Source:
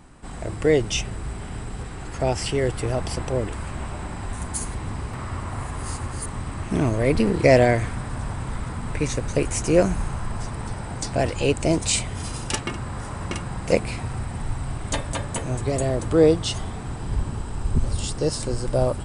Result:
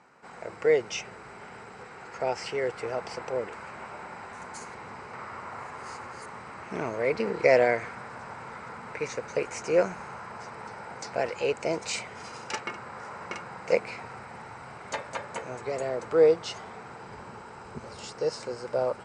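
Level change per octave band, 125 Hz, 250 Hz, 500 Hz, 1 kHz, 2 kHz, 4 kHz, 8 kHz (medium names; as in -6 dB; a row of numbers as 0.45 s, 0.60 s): -20.0 dB, -13.5 dB, -3.5 dB, -3.5 dB, -3.0 dB, -9.0 dB, -13.0 dB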